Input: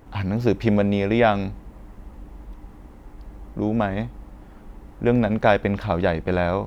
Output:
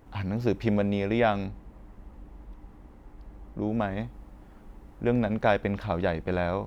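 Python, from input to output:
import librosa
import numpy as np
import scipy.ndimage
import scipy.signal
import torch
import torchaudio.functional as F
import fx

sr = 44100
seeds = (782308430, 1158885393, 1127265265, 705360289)

y = fx.high_shelf(x, sr, hz=4500.0, db=-5.0, at=(1.46, 3.69))
y = y * 10.0 ** (-6.0 / 20.0)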